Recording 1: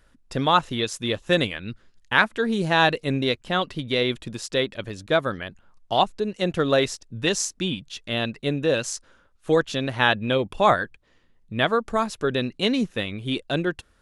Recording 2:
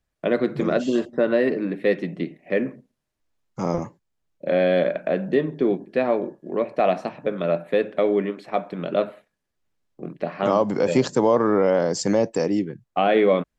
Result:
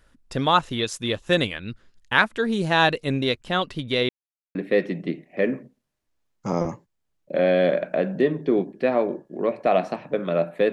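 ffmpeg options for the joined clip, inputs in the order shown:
-filter_complex "[0:a]apad=whole_dur=10.72,atrim=end=10.72,asplit=2[a][b];[a]atrim=end=4.09,asetpts=PTS-STARTPTS,afade=t=out:st=4.086:d=0.004:c=hsin[c];[b]atrim=start=4.09:end=4.55,asetpts=PTS-STARTPTS,volume=0[d];[1:a]atrim=start=1.68:end=7.85,asetpts=PTS-STARTPTS,afade=t=in:d=0.004:c=hsin[e];[c][d][e]concat=n=3:v=0:a=1"

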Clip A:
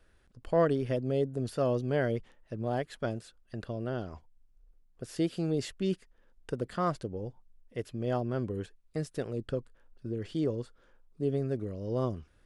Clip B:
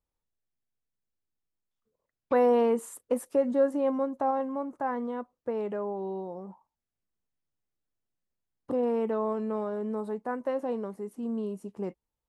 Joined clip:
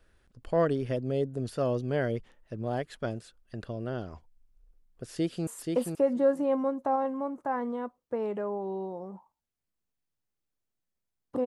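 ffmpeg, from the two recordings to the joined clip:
-filter_complex "[0:a]apad=whole_dur=11.46,atrim=end=11.46,atrim=end=5.472[a];[1:a]atrim=start=2.818:end=8.81[b];[a][b]acrossfade=d=0.004:c1=hsin:c2=hsin,asplit=2[c][d];[d]afade=t=in:st=5.1:d=0.01,afade=t=out:st=5.47:d=0.01,aecho=0:1:480|960:0.668344|0.0668344[e];[c][e]amix=inputs=2:normalize=0"

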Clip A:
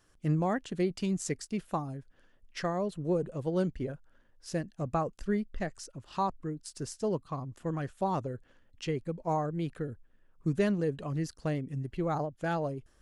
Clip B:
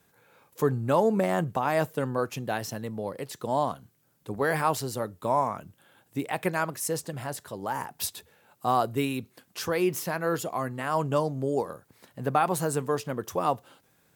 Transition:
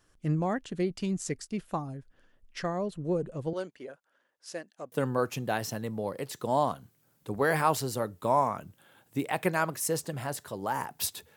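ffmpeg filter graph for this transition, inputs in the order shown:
-filter_complex "[0:a]asettb=1/sr,asplit=3[a][b][c];[a]atrim=end=3.534[d];[b]atrim=start=3.53:end=4.92,asetpts=PTS-STARTPTS,afade=t=in:d=0.004:c=qsin,afade=t=out:st=1.386:d=0.004:c=qsin,highpass=500[e];[c]atrim=start=4.916[f];[d][e]acrossfade=d=0.004:c1=hsin:c2=qsin[g];[g][f]acrossfade=d=0.004:c1=qsin:c2=hsin,apad=whole_dur=11.36,atrim=end=11.36,atrim=end=4.922[h];[1:a]atrim=start=1.918:end=8.36[i];[h][i]acrossfade=d=0.004:c1=hsin:c2=hsin"

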